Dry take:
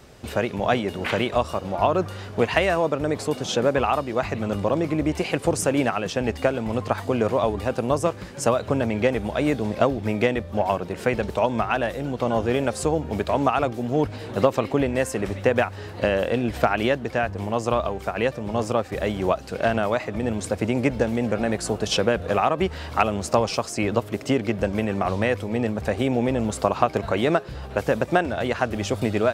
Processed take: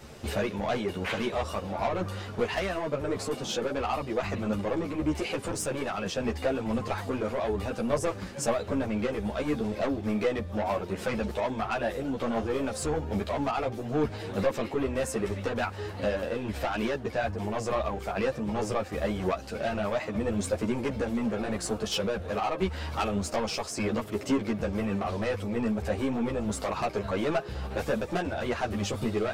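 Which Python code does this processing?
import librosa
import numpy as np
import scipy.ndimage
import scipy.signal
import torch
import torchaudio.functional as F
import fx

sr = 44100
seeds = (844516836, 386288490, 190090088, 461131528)

y = 10.0 ** (-19.5 / 20.0) * np.tanh(x / 10.0 ** (-19.5 / 20.0))
y = fx.rider(y, sr, range_db=10, speed_s=0.5)
y = fx.ensemble(y, sr)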